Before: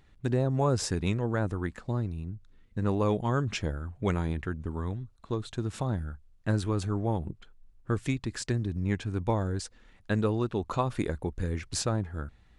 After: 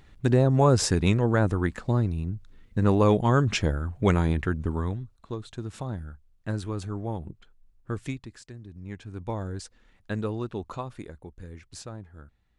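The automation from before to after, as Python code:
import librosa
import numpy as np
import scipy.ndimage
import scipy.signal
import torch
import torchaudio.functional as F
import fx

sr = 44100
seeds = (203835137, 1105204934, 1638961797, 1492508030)

y = fx.gain(x, sr, db=fx.line((4.69, 6.5), (5.37, -3.0), (8.09, -3.0), (8.48, -15.0), (9.43, -3.0), (10.6, -3.0), (11.07, -11.0)))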